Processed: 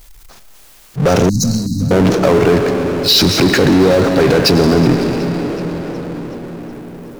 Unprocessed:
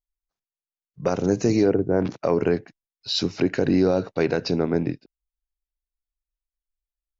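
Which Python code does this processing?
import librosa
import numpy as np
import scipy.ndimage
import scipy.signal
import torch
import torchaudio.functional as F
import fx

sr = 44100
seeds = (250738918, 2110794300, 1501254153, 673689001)

p1 = fx.over_compress(x, sr, threshold_db=-27.0, ratio=-1.0)
p2 = x + F.gain(torch.from_numpy(p1), 2.5).numpy()
p3 = fx.rev_freeverb(p2, sr, rt60_s=3.7, hf_ratio=0.7, predelay_ms=60, drr_db=10.5)
p4 = fx.power_curve(p3, sr, exponent=0.5)
p5 = fx.brickwall_bandstop(p4, sr, low_hz=280.0, high_hz=3800.0, at=(1.29, 1.91))
p6 = fx.echo_warbled(p5, sr, ms=373, feedback_pct=57, rate_hz=2.8, cents=65, wet_db=-20.0)
y = F.gain(torch.from_numpy(p6), 1.0).numpy()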